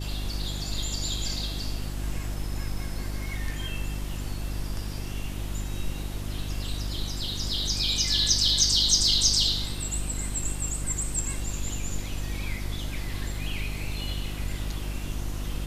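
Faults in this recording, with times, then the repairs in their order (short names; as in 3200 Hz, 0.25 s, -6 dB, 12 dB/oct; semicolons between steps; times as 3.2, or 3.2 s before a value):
hum 50 Hz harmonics 7 -33 dBFS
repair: de-hum 50 Hz, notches 7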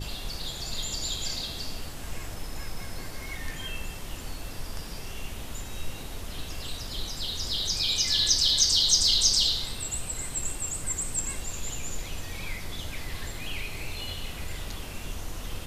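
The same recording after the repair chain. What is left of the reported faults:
none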